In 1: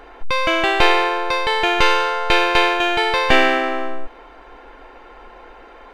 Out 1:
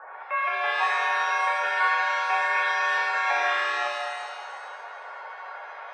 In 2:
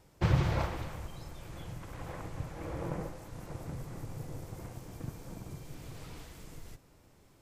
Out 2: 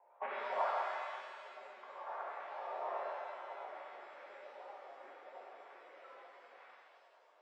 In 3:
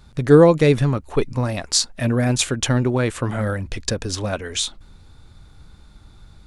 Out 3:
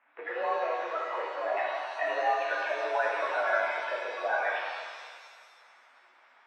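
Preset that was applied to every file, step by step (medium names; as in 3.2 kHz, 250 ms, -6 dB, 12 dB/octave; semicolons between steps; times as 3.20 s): coarse spectral quantiser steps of 30 dB; compression, threshold -22 dBFS; distance through air 280 m; mistuned SSB +62 Hz 580–2300 Hz; pitch-shifted reverb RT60 1.7 s, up +7 st, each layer -8 dB, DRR -4 dB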